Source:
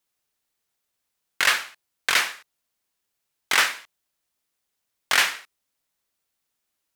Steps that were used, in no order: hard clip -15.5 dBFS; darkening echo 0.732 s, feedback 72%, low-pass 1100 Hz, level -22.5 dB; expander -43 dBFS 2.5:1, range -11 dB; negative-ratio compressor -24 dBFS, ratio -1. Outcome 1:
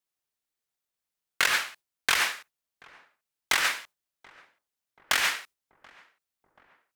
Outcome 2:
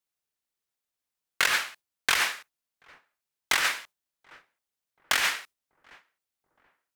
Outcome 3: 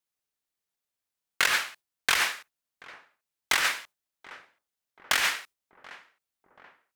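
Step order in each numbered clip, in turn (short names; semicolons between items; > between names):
hard clip > negative-ratio compressor > expander > darkening echo; hard clip > darkening echo > expander > negative-ratio compressor; expander > darkening echo > hard clip > negative-ratio compressor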